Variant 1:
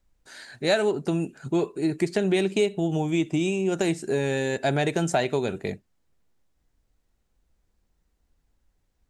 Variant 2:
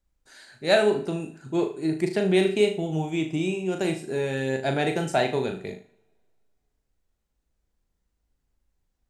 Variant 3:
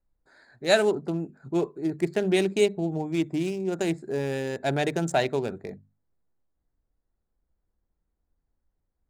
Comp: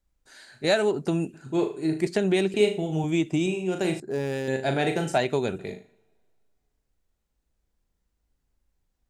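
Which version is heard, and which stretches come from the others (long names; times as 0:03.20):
2
0:00.64–0:01.34: punch in from 1
0:02.07–0:02.54: punch in from 1
0:03.04–0:03.46: punch in from 1
0:04.00–0:04.48: punch in from 3
0:05.18–0:05.59: punch in from 1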